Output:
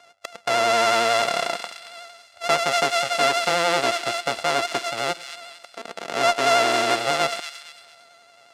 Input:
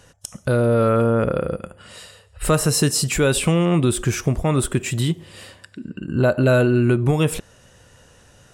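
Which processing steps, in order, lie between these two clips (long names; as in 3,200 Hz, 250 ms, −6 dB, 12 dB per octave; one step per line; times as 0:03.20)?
samples sorted by size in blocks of 64 samples
pitch vibrato 11 Hz 43 cents
in parallel at −5.5 dB: hard clipping −15 dBFS, distortion −11 dB
on the sum: band-pass filter 560–6,700 Hz
on a send: delay with a high-pass on its return 227 ms, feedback 36%, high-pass 2,100 Hz, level −7 dB
on the sum: harmonic generator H 2 −25 dB, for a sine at −1 dBFS
level −2 dB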